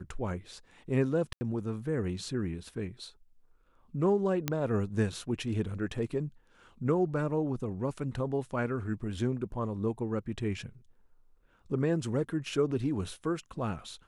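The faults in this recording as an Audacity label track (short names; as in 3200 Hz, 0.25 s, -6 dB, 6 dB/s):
1.330000	1.410000	gap 80 ms
4.480000	4.480000	pop -13 dBFS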